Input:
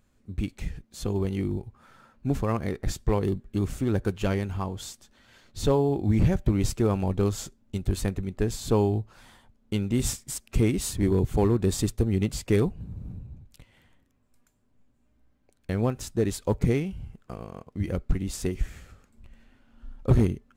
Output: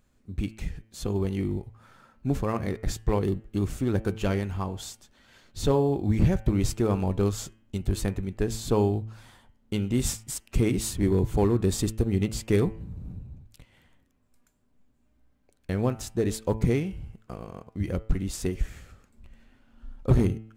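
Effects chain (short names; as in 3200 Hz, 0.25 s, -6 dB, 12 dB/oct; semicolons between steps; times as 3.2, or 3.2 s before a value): de-hum 110.2 Hz, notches 29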